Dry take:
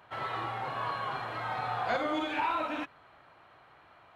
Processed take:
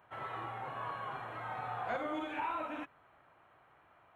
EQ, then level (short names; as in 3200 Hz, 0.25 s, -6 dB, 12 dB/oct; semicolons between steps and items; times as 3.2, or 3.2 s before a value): bell 4700 Hz -14.5 dB 0.73 oct; -6.0 dB